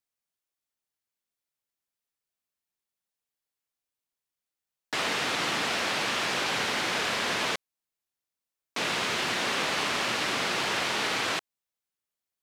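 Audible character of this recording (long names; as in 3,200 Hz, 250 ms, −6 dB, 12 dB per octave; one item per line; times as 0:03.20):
background noise floor −90 dBFS
spectral slope −1.5 dB per octave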